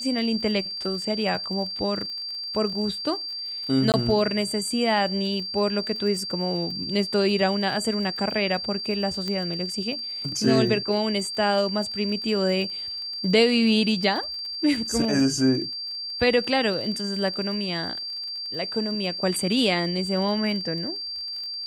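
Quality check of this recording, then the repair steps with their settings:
crackle 29 per s -33 dBFS
whine 4.7 kHz -30 dBFS
3.92–3.94 s: dropout 18 ms
9.28 s: pop -17 dBFS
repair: de-click; band-stop 4.7 kHz, Q 30; interpolate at 3.92 s, 18 ms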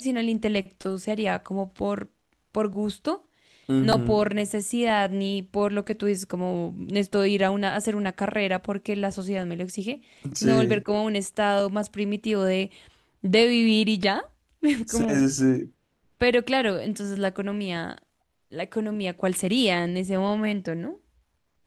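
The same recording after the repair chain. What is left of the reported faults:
nothing left

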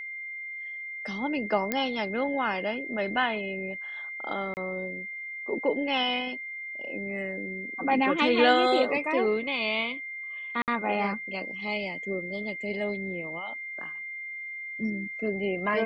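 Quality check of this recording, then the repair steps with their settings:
whine 2.1 kHz -35 dBFS
1.72 s: pop -12 dBFS
4.54–4.57 s: dropout 29 ms
10.62–10.68 s: dropout 58 ms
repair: de-click; band-stop 2.1 kHz, Q 30; interpolate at 4.54 s, 29 ms; interpolate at 10.62 s, 58 ms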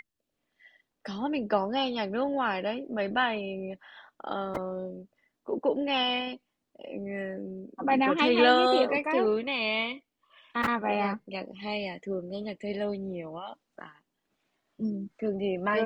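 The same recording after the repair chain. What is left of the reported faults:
nothing left

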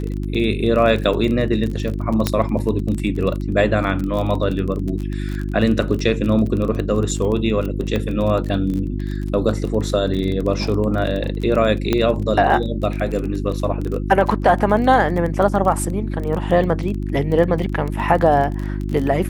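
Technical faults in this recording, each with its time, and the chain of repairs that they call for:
crackle 23 per s -24 dBFS
hum 50 Hz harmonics 7 -24 dBFS
2.27 s: pop -3 dBFS
7.96 s: pop -11 dBFS
11.93 s: pop -5 dBFS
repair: de-click; de-hum 50 Hz, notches 7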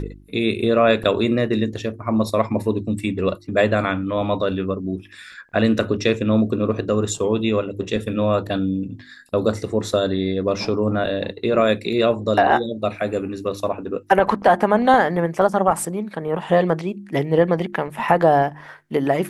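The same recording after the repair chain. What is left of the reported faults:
11.93 s: pop

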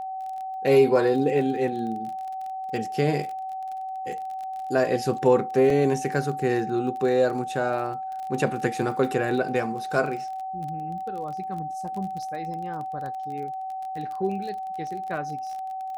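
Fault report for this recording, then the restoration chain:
crackle 28 per s -33 dBFS
whine 760 Hz -30 dBFS
5.70 s: dropout 2.5 ms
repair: de-click; band-stop 760 Hz, Q 30; interpolate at 5.70 s, 2.5 ms

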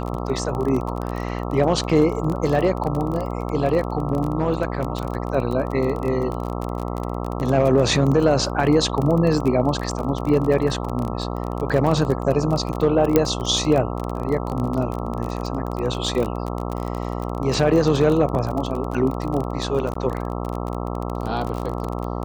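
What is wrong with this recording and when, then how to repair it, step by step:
buzz 60 Hz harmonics 22 -27 dBFS
crackle 28 per s -24 dBFS
13.16 s: pop -3 dBFS
19.94–19.95 s: dropout 14 ms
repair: de-click; de-hum 60 Hz, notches 22; interpolate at 19.94 s, 14 ms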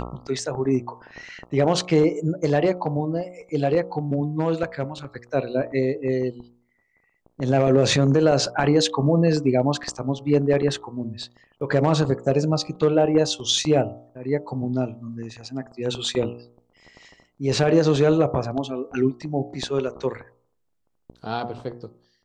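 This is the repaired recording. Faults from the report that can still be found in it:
nothing left

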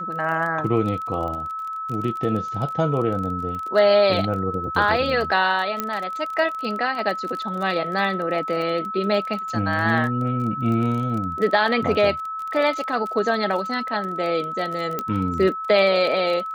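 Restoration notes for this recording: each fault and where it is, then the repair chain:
crackle 26 per s -28 dBFS
whine 1.3 kHz -27 dBFS
5.80 s: pop -9 dBFS
14.99 s: pop -11 dBFS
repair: de-click; band-stop 1.3 kHz, Q 30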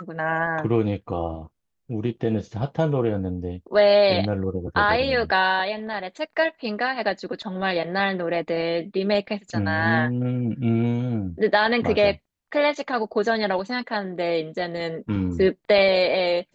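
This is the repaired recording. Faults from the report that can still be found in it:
nothing left

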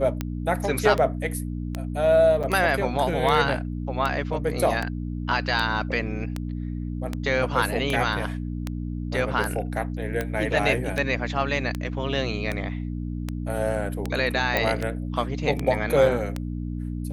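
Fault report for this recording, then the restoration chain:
hum 60 Hz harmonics 5 -30 dBFS
tick 78 rpm -13 dBFS
2.43–2.44 s: dropout 6.6 ms
14.57 s: pop -9 dBFS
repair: de-click; de-hum 60 Hz, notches 5; interpolate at 2.43 s, 6.6 ms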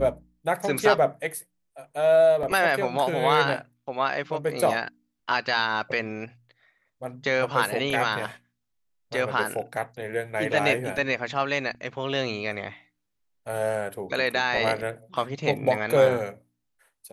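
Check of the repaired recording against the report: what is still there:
nothing left

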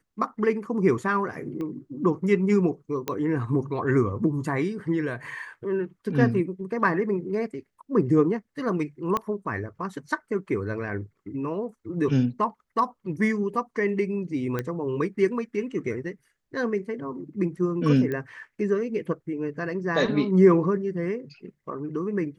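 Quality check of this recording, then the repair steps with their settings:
1.61 s: pop -24 dBFS
3.08 s: pop -13 dBFS
9.17 s: pop -13 dBFS
14.59 s: pop -15 dBFS
18.12 s: pop -19 dBFS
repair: de-click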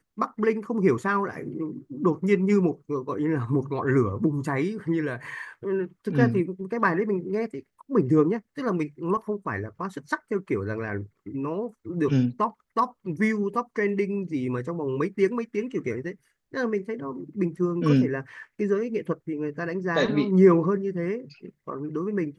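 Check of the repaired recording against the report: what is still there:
1.61 s: pop
9.17 s: pop
18.12 s: pop

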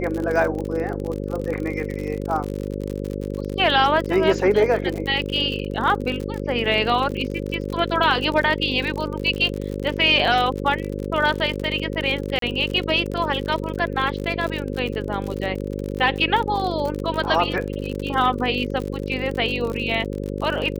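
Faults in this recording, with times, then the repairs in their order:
buzz 50 Hz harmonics 11 -28 dBFS
crackle 53 per s -26 dBFS
7.11–7.12 s: dropout 6.6 ms
12.39–12.42 s: dropout 33 ms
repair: de-click; de-hum 50 Hz, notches 11; interpolate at 7.11 s, 6.6 ms; interpolate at 12.39 s, 33 ms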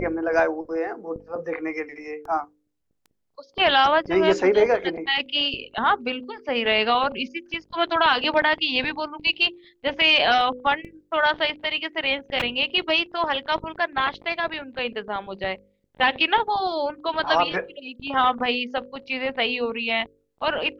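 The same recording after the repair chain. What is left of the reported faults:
nothing left

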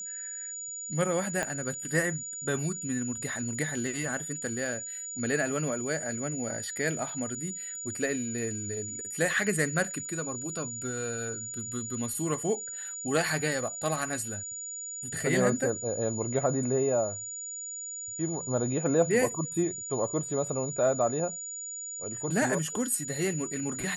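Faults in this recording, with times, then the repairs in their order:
whine 6.9 kHz -36 dBFS
1.43 s: pop -16 dBFS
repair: de-click; band-stop 6.9 kHz, Q 30

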